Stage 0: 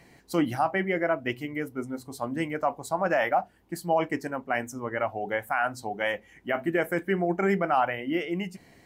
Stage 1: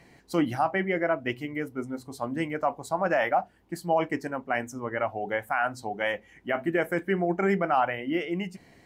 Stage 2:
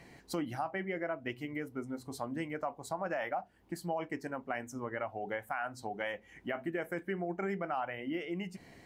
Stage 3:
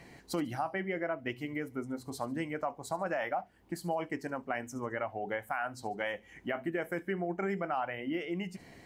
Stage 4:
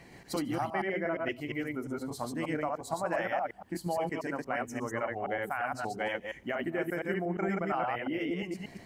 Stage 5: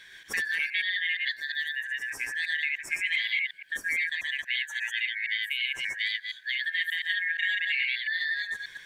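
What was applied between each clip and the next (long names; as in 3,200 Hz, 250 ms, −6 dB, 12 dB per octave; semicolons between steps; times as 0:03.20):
high-shelf EQ 9,500 Hz −7 dB
downward compressor 2.5 to 1, threshold −38 dBFS, peak gain reduction 12.5 dB
delay with a high-pass on its return 72 ms, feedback 35%, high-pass 4,400 Hz, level −14.5 dB; level +2 dB
delay that plays each chunk backwards 117 ms, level −1 dB
band-splitting scrambler in four parts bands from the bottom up 4123; level +3 dB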